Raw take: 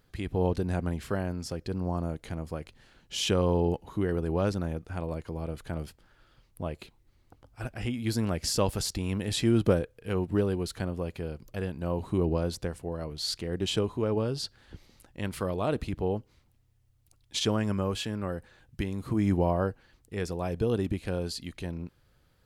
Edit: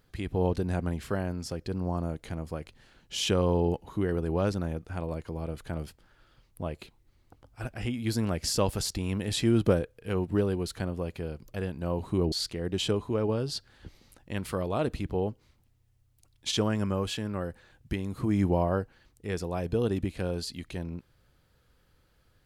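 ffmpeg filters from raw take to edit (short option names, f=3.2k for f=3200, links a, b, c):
-filter_complex "[0:a]asplit=2[a][b];[a]atrim=end=12.322[c];[b]atrim=start=13.198[d];[c][d]acrossfade=d=0.004:c1=hsin:c2=hsin"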